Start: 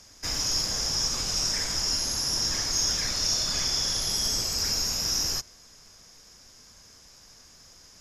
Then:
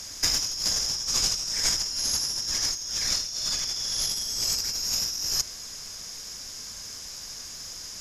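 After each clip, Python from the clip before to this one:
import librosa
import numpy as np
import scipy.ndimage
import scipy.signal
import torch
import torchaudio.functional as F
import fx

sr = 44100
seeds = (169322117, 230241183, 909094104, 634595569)

y = fx.high_shelf(x, sr, hz=2400.0, db=8.5)
y = fx.over_compress(y, sr, threshold_db=-26.0, ratio=-0.5)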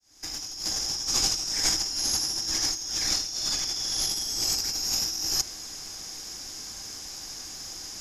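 y = fx.fade_in_head(x, sr, length_s=1.09)
y = fx.small_body(y, sr, hz=(320.0, 780.0), ring_ms=45, db=10)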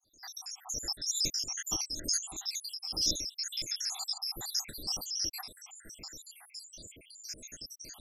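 y = fx.spec_dropout(x, sr, seeds[0], share_pct=83)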